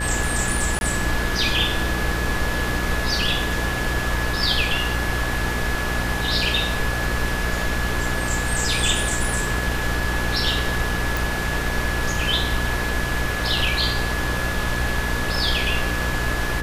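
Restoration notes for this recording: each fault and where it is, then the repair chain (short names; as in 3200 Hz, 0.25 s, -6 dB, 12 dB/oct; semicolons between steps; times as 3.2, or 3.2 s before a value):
buzz 60 Hz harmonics 11 -27 dBFS
tone 1700 Hz -28 dBFS
0.79–0.81 gap 21 ms
11.17 pop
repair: de-click; notch 1700 Hz, Q 30; de-hum 60 Hz, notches 11; interpolate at 0.79, 21 ms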